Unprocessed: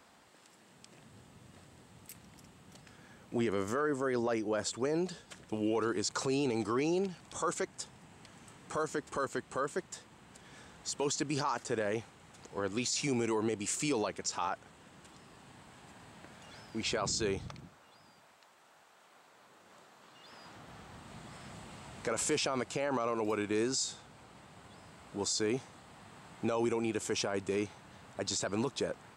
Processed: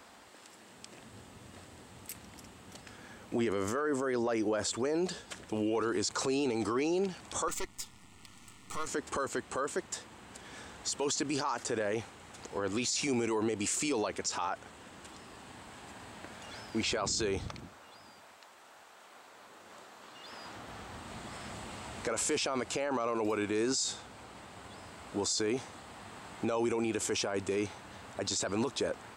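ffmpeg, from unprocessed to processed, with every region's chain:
-filter_complex "[0:a]asettb=1/sr,asplit=3[s0][s1][s2];[s0]atrim=end=7.484[s3];[s1]atrim=start=7.48:end=8.87,asetpts=PTS-STARTPTS,afade=t=in:d=0.004:c=qsin,afade=t=out:st=1.386:d=0.004:c=qsin,aeval=exprs='if(lt(val(0),0),0.251*val(0),val(0))':c=same,asuperstop=centerf=1600:order=12:qfactor=5.5,equalizer=f=560:t=o:w=1.2:g=-13[s4];[s2]atrim=start=8.866[s5];[s3][s4]acrossfade=d=0.004:c1=hsin:c2=qsin[s6];[s6][s5]acrossfade=d=0.004:c1=qsin:c2=hsin,equalizer=f=150:t=o:w=0.5:g=-9.5,alimiter=level_in=2:limit=0.0631:level=0:latency=1:release=31,volume=0.501,volume=2.11"

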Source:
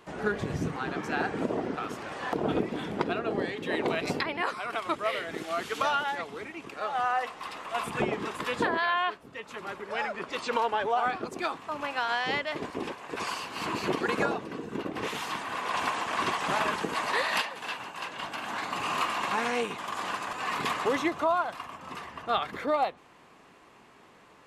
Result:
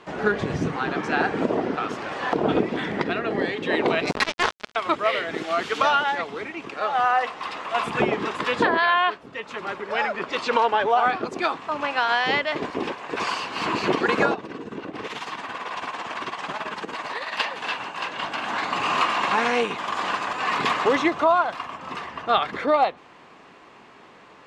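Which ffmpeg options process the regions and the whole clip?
-filter_complex "[0:a]asettb=1/sr,asplit=3[s0][s1][s2];[s0]atrim=end=2.774[s3];[s1]atrim=start=2.77:end=3.41,asetpts=PTS-STARTPTS,afade=t=in:d=0.004:c=qsin,afade=t=out:st=0.636:d=0.004:c=qsin,equalizer=f=1900:w=3.6:g=10,acrossover=split=270|3000[s4][s5][s6];[s5]acompressor=threshold=0.0224:ratio=2:attack=3.2:release=140:knee=2.83:detection=peak[s7];[s4][s7][s6]amix=inputs=3:normalize=0[s8];[s2]atrim=start=3.406[s9];[s3][s8]acrossfade=d=0.004:c1=hsin:c2=qsin[s10];[s10][s9]acrossfade=d=0.004:c1=qsin:c2=hsin,asettb=1/sr,asplit=3[s11][s12][s13];[s11]atrim=end=4.114[s14];[s12]atrim=start=4.11:end=4.76,asetpts=PTS-STARTPTS,afade=t=in:d=0.004:c=qsin,afade=t=out:st=0.646:d=0.004:c=qsin,agate=range=0.0224:threshold=0.02:ratio=3:release=100:detection=peak,aecho=1:1:4.7:0.67,atrim=end_sample=28665,acrusher=bits=3:mix=0:aa=0.5[s15];[s13]atrim=start=4.756[s16];[s14][s15]acrossfade=d=0.004:c1=hsin:c2=qsin[s17];[s17][s16]acrossfade=d=0.004:c1=qsin:c2=hsin,asettb=1/sr,asplit=3[s18][s19][s20];[s18]atrim=end=14.344[s21];[s19]atrim=start=14.34:end=17.4,asetpts=PTS-STARTPTS,afade=t=in:d=0.004:c=qsin,afade=t=out:st=3.056:d=0.004:c=qsin,tremolo=f=18:d=0.66,acompressor=threshold=0.0158:ratio=3:attack=3.2:release=140:knee=1:detection=peak[s22];[s20]atrim=start=17.396[s23];[s21][s22]acrossfade=d=0.004:c1=hsin:c2=qsin[s24];[s24][s23]acrossfade=d=0.004:c1=qsin:c2=hsin,lowpass=5600,lowshelf=f=120:g=-7,volume=2.37"

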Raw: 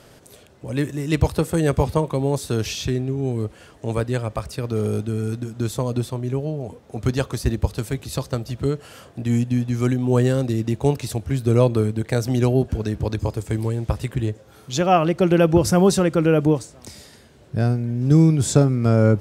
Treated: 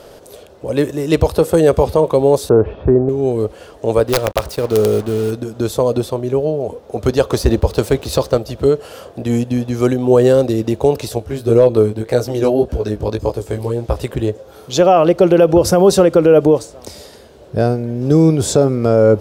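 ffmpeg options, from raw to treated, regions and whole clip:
-filter_complex "[0:a]asettb=1/sr,asplit=3[s0][s1][s2];[s0]atrim=end=2.494[s3];[s1]atrim=start=2.49:end=3.09,asetpts=PTS-STARTPTS,afade=t=in:d=0.004:c=qsin,afade=t=out:st=0.596:d=0.004:c=qsin,lowpass=f=1300:w=0.5412,lowpass=f=1300:w=1.3066,acontrast=23[s4];[s2]atrim=start=3.086[s5];[s3][s4]acrossfade=d=0.004:c1=hsin:c2=qsin[s6];[s6][s5]acrossfade=d=0.004:c1=qsin:c2=hsin,asettb=1/sr,asplit=3[s7][s8][s9];[s7]atrim=end=4.084[s10];[s8]atrim=start=4.08:end=5.31,asetpts=PTS-STARTPTS,afade=t=in:d=0.004:c=qsin,afade=t=out:st=1.226:d=0.004:c=qsin,acrusher=bits=5:mix=0:aa=0.5,aeval=exprs='(mod(4.22*val(0)+1,2)-1)/4.22':c=same[s11];[s9]atrim=start=5.306[s12];[s10][s11]acrossfade=d=0.004:c1=hsin:c2=qsin[s13];[s13][s12]acrossfade=d=0.004:c1=qsin:c2=hsin,asettb=1/sr,asplit=3[s14][s15][s16];[s14]atrim=end=7.304[s17];[s15]atrim=start=7.3:end=8.38,asetpts=PTS-STARTPTS,afade=t=in:d=0.004:c=qsin,afade=t=out:st=1.076:d=0.004:c=qsin,highshelf=f=11000:g=-7.5,acontrast=37,aeval=exprs='sgn(val(0))*max(abs(val(0))-0.00596,0)':c=same[s18];[s16]atrim=start=8.376[s19];[s17][s18]acrossfade=d=0.004:c1=hsin:c2=qsin[s20];[s20][s19]acrossfade=d=0.004:c1=qsin:c2=hsin,asettb=1/sr,asplit=3[s21][s22][s23];[s21]atrim=end=11.094[s24];[s22]atrim=start=11.09:end=13.96,asetpts=PTS-STARTPTS,afade=t=in:d=0.004:c=qsin,afade=t=out:st=2.866:d=0.004:c=qsin,flanger=delay=16:depth=3.8:speed=1.8,volume=2.24,asoftclip=hard,volume=0.447[s25];[s23]atrim=start=13.956[s26];[s24][s25]acrossfade=d=0.004:c1=hsin:c2=qsin[s27];[s27][s26]acrossfade=d=0.004:c1=qsin:c2=hsin,equalizer=f=125:t=o:w=1:g=-8,equalizer=f=250:t=o:w=1:g=-4,equalizer=f=500:t=o:w=1:g=7,equalizer=f=2000:t=o:w=1:g=-6,equalizer=f=8000:t=o:w=1:g=-5,alimiter=level_in=2.99:limit=0.891:release=50:level=0:latency=1,volume=0.891"

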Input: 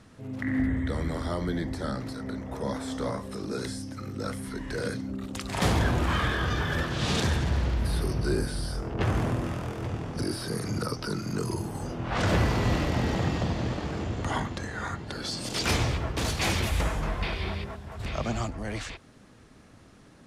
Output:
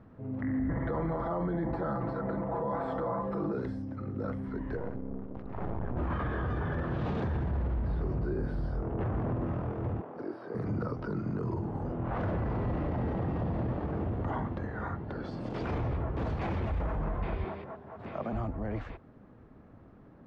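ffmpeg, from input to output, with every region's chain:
-filter_complex "[0:a]asettb=1/sr,asplit=3[s0][s1][s2];[s0]atrim=end=0.694[s3];[s1]atrim=start=0.69:end=3.53,asetpts=PTS-STARTPTS,afade=t=in:d=0.004:c=qsin,afade=t=out:st=2.836:d=0.004:c=qsin,equalizer=f=930:w=0.79:g=9.5,bandreject=f=6000:w=7.6,aecho=1:1:6:0.98,atrim=end_sample=125244[s4];[s2]atrim=start=3.526[s5];[s3][s4]acrossfade=d=0.004:c1=hsin:c2=qsin[s6];[s6][s5]acrossfade=d=0.004:c1=qsin:c2=hsin,asettb=1/sr,asplit=3[s7][s8][s9];[s7]atrim=end=4.774[s10];[s8]atrim=start=4.77:end=5.97,asetpts=PTS-STARTPTS,afade=t=in:d=0.004:c=qsin,afade=t=out:st=1.196:d=0.004:c=qsin,lowpass=f=1100:p=1,aeval=exprs='max(val(0),0)':c=same[s11];[s9]atrim=start=5.966[s12];[s10][s11]acrossfade=d=0.004:c1=hsin:c2=qsin[s13];[s13][s12]acrossfade=d=0.004:c1=qsin:c2=hsin,asettb=1/sr,asplit=3[s14][s15][s16];[s14]atrim=end=10.014[s17];[s15]atrim=start=10.01:end=10.55,asetpts=PTS-STARTPTS,afade=t=in:d=0.004:c=qsin,afade=t=out:st=0.536:d=0.004:c=qsin,highpass=430,highshelf=f=2200:g=-8.5[s18];[s16]atrim=start=10.546[s19];[s17][s18]acrossfade=d=0.004:c1=hsin:c2=qsin[s20];[s20][s19]acrossfade=d=0.004:c1=qsin:c2=hsin,asettb=1/sr,asplit=3[s21][s22][s23];[s21]atrim=end=17.444[s24];[s22]atrim=start=17.44:end=18.33,asetpts=PTS-STARTPTS,afade=t=in:d=0.004:c=qsin,afade=t=out:st=0.886:d=0.004:c=qsin,highpass=190,bandreject=f=50:t=h:w=6,bandreject=f=100:t=h:w=6,bandreject=f=150:t=h:w=6,bandreject=f=200:t=h:w=6,bandreject=f=250:t=h:w=6,bandreject=f=300:t=h:w=6,bandreject=f=350:t=h:w=6,bandreject=f=400:t=h:w=6,bandreject=f=450:t=h:w=6,bandreject=f=500:t=h:w=6[s25];[s23]atrim=start=18.326[s26];[s24][s25]acrossfade=d=0.004:c1=hsin:c2=qsin[s27];[s27][s26]acrossfade=d=0.004:c1=qsin:c2=hsin,lowpass=1100,alimiter=level_in=1.12:limit=0.0631:level=0:latency=1:release=22,volume=0.891"

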